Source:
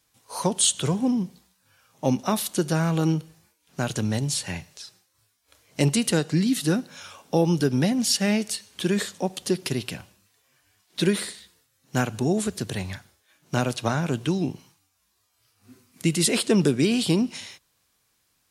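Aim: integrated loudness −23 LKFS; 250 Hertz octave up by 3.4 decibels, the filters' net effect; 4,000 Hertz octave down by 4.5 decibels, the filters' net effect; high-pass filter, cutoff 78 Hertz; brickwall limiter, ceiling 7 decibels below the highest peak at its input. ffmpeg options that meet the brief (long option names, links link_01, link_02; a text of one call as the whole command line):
ffmpeg -i in.wav -af "highpass=78,equalizer=frequency=250:width_type=o:gain=4.5,equalizer=frequency=4000:width_type=o:gain=-6,volume=2dB,alimiter=limit=-12dB:level=0:latency=1" out.wav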